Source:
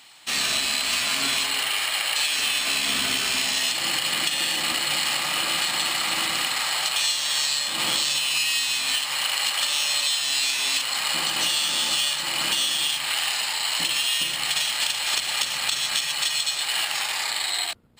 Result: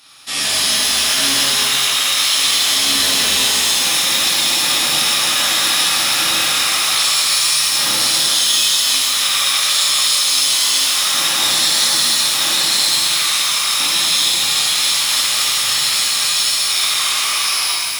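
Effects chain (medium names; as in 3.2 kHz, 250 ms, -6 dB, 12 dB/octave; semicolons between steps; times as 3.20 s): formant shift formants +4 st; pitch-shifted reverb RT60 2.9 s, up +12 st, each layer -8 dB, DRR -8 dB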